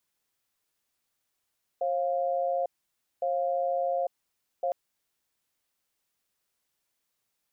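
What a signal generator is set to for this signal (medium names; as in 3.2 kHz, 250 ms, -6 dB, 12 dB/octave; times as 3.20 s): cadence 538 Hz, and 700 Hz, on 0.85 s, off 0.56 s, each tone -28 dBFS 2.91 s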